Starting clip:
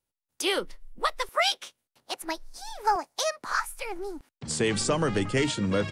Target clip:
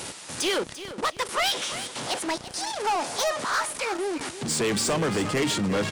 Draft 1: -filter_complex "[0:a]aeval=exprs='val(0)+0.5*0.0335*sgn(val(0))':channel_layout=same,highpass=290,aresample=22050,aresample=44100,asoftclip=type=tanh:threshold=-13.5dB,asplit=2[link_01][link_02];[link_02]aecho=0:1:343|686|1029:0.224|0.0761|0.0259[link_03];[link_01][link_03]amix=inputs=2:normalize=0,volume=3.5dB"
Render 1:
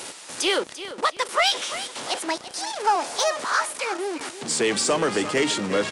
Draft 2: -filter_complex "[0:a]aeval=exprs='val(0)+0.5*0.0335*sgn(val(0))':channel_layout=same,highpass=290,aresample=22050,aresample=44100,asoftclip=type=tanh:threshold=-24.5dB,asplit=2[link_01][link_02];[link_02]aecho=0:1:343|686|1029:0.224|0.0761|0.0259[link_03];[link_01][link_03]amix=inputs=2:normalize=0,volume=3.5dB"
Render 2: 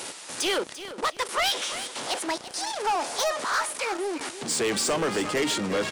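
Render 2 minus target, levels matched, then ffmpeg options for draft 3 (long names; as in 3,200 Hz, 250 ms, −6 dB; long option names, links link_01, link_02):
125 Hz band −7.5 dB
-filter_complex "[0:a]aeval=exprs='val(0)+0.5*0.0335*sgn(val(0))':channel_layout=same,highpass=130,aresample=22050,aresample=44100,asoftclip=type=tanh:threshold=-24.5dB,asplit=2[link_01][link_02];[link_02]aecho=0:1:343|686|1029:0.224|0.0761|0.0259[link_03];[link_01][link_03]amix=inputs=2:normalize=0,volume=3.5dB"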